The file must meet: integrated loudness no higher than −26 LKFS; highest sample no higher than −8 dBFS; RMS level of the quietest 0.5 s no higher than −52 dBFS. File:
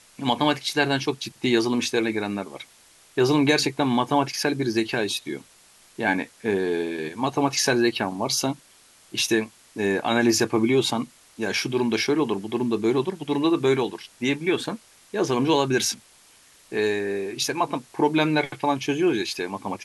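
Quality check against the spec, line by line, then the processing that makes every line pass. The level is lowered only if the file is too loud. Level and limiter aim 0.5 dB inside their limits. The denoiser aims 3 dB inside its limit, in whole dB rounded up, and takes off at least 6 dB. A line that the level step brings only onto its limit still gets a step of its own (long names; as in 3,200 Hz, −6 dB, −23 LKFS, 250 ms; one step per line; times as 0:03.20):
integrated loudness −24.0 LKFS: out of spec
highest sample −7.0 dBFS: out of spec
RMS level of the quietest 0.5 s −55 dBFS: in spec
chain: level −2.5 dB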